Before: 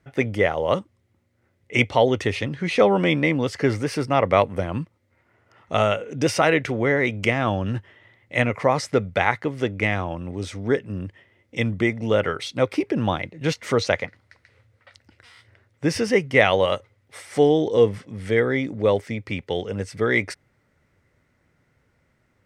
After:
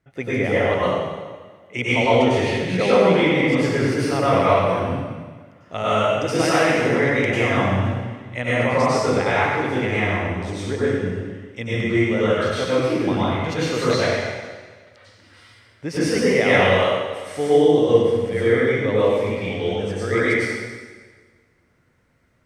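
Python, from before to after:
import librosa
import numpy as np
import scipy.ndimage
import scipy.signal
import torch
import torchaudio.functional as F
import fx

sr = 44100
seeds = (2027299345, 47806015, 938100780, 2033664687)

y = fx.rev_plate(x, sr, seeds[0], rt60_s=1.5, hf_ratio=0.95, predelay_ms=85, drr_db=-10.0)
y = y * 10.0 ** (-7.5 / 20.0)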